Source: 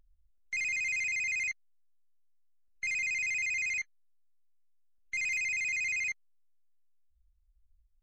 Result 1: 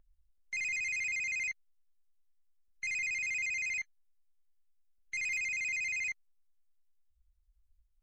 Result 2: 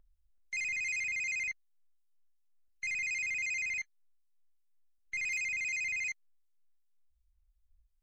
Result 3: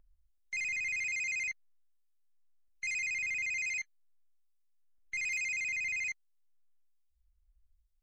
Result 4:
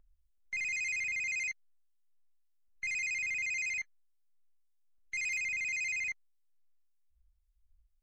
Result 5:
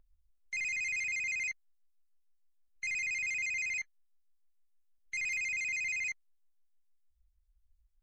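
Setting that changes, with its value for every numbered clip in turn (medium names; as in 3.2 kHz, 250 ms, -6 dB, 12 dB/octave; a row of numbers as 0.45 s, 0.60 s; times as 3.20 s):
harmonic tremolo, rate: 10 Hz, 2.7 Hz, 1.2 Hz, 1.8 Hz, 6.5 Hz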